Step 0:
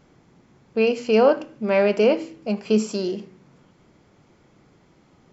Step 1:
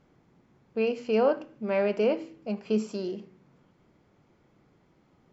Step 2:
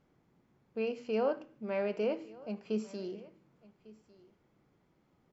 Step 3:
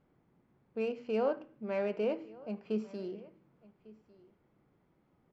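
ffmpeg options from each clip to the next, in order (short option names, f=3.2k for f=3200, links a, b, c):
-af "aemphasis=mode=reproduction:type=cd,volume=-7.5dB"
-af "aecho=1:1:1150:0.0841,volume=-7.5dB"
-af "adynamicsmooth=sensitivity=6.5:basefreq=3.6k"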